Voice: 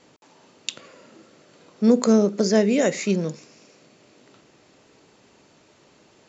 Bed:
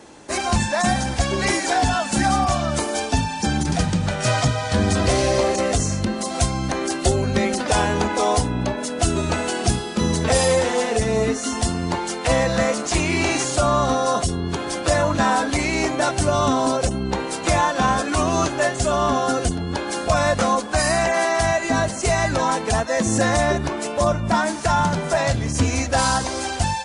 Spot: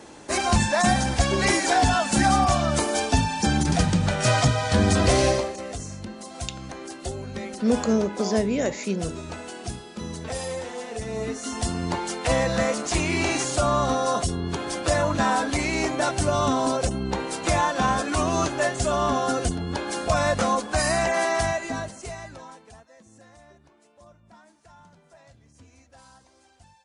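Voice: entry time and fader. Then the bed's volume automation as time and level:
5.80 s, -5.0 dB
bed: 5.29 s -0.5 dB
5.53 s -13.5 dB
10.83 s -13.5 dB
11.80 s -3.5 dB
21.38 s -3.5 dB
23.03 s -33 dB

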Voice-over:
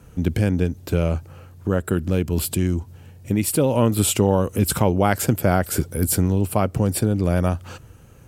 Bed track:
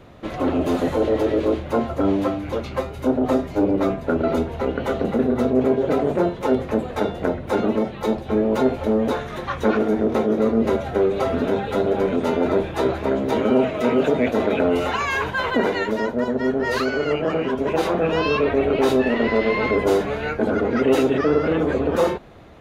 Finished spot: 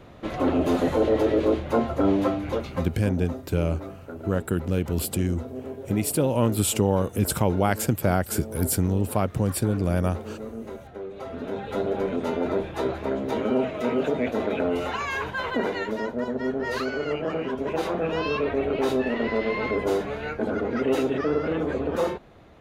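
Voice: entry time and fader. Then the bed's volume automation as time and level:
2.60 s, -4.0 dB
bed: 2.54 s -1.5 dB
3.32 s -17.5 dB
11.06 s -17.5 dB
11.78 s -6 dB

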